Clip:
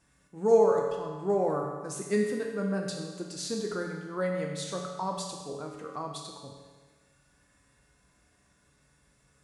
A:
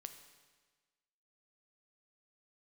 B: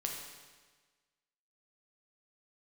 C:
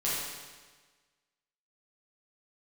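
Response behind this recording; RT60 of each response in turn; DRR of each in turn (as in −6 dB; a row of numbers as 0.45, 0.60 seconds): B; 1.4, 1.4, 1.4 seconds; 7.5, 0.0, −8.5 decibels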